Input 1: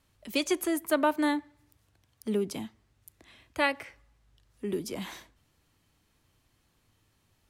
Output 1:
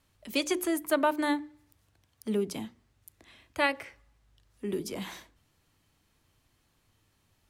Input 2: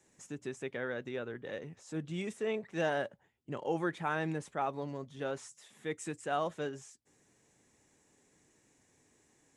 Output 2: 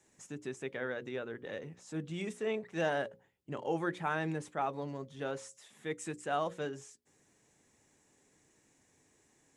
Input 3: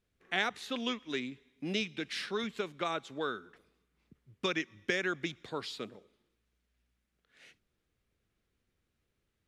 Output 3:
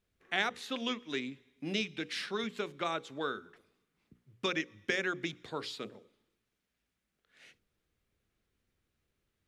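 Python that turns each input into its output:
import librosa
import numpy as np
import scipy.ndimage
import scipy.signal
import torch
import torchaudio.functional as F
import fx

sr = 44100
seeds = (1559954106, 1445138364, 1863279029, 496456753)

y = fx.hum_notches(x, sr, base_hz=60, count=9)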